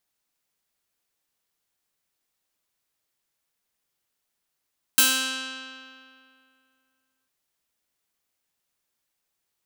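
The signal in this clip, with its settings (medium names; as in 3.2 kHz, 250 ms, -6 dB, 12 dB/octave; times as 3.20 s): plucked string C4, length 2.30 s, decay 2.40 s, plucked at 0.44, bright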